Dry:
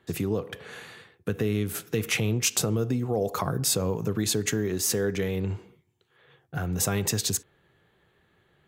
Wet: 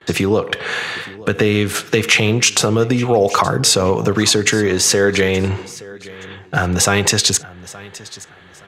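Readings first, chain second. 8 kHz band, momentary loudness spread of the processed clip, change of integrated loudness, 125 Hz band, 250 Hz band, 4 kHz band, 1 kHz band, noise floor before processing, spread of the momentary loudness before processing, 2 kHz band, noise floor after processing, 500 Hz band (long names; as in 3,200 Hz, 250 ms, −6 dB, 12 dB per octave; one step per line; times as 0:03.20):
+11.0 dB, 20 LU, +12.0 dB, +8.5 dB, +10.5 dB, +15.0 dB, +16.0 dB, −67 dBFS, 13 LU, +17.0 dB, −43 dBFS, +13.0 dB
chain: noise gate with hold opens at −58 dBFS
low-shelf EQ 480 Hz −12 dB
in parallel at +2.5 dB: downward compressor, threshold −42 dBFS, peak gain reduction 19.5 dB
on the sum: high-frequency loss of the air 73 metres
repeating echo 871 ms, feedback 28%, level −20 dB
boost into a limiter +18 dB
level −1 dB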